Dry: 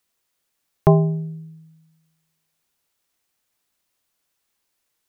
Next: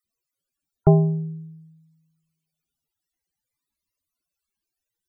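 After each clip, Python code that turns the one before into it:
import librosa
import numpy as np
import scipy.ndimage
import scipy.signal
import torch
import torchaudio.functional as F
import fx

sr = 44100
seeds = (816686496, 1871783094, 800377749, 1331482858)

y = fx.low_shelf(x, sr, hz=190.0, db=3.0)
y = fx.spec_topn(y, sr, count=64)
y = fx.notch_cascade(y, sr, direction='rising', hz=0.5)
y = F.gain(torch.from_numpy(y), -2.0).numpy()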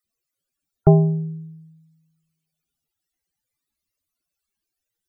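y = fx.notch(x, sr, hz=980.0, q=8.2)
y = F.gain(torch.from_numpy(y), 2.0).numpy()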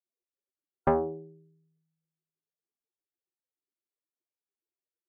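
y = fx.cheby_harmonics(x, sr, harmonics=(8,), levels_db=(-24,), full_scale_db=-1.0)
y = fx.ladder_bandpass(y, sr, hz=430.0, resonance_pct=55)
y = fx.doppler_dist(y, sr, depth_ms=0.97)
y = F.gain(torch.from_numpy(y), 1.0).numpy()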